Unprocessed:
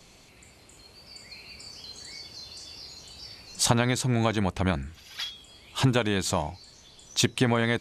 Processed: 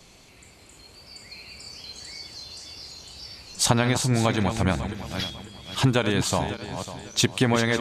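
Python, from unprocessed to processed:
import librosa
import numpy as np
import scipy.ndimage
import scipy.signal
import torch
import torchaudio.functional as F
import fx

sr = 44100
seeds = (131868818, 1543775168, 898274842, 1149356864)

y = fx.reverse_delay_fb(x, sr, ms=274, feedback_pct=56, wet_db=-9.0)
y = F.gain(torch.from_numpy(y), 2.0).numpy()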